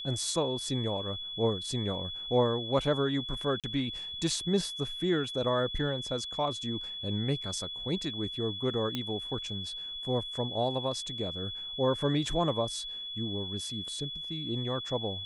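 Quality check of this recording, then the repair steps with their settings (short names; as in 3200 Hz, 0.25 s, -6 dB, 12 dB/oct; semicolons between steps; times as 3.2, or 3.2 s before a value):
tone 3400 Hz -37 dBFS
3.6–3.64 gap 37 ms
8.95 pop -18 dBFS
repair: de-click; notch 3400 Hz, Q 30; interpolate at 3.6, 37 ms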